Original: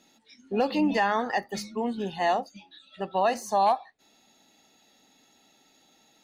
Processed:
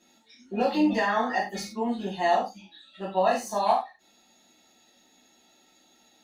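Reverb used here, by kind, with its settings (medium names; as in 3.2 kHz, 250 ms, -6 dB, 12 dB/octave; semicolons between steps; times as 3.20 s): gated-style reverb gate 130 ms falling, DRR -6 dB; trim -6.5 dB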